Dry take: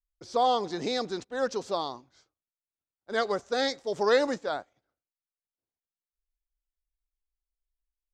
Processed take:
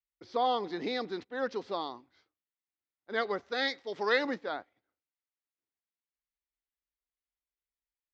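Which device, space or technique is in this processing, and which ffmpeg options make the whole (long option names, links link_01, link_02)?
guitar cabinet: -filter_complex "[0:a]highpass=81,equalizer=frequency=140:width_type=q:width=4:gain=-9,equalizer=frequency=300:width_type=q:width=4:gain=3,equalizer=frequency=610:width_type=q:width=4:gain=-4,equalizer=frequency=2000:width_type=q:width=4:gain=6,lowpass=frequency=4300:width=0.5412,lowpass=frequency=4300:width=1.3066,asettb=1/sr,asplit=3[link_01][link_02][link_03];[link_01]atrim=end=3.514[link_04];[link_02]atrim=start=3.51:end=4.25,asetpts=PTS-STARTPTS,afade=type=in:duration=0.004:curve=qsin,afade=type=out:start_time=0.736:duration=0.004:curve=qsin,tiltshelf=frequency=1100:gain=-4[link_05];[link_03]atrim=start=4.246[link_06];[link_04][link_05]acrossfade=duration=0.004:curve1=hsin:curve2=qsin[link_07];[link_07][link_06]acrossfade=duration=0.004:curve1=qsin:curve2=hsin,volume=-3.5dB"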